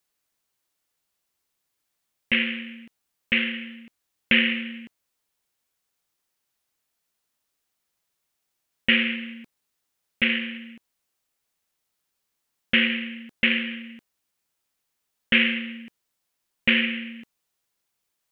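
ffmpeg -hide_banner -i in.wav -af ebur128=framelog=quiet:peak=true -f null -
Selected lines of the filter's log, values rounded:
Integrated loudness:
  I:         -23.0 LUFS
  Threshold: -34.6 LUFS
Loudness range:
  LRA:         5.9 LU
  Threshold: -47.5 LUFS
  LRA low:   -31.6 LUFS
  LRA high:  -25.7 LUFS
True peak:
  Peak:       -4.9 dBFS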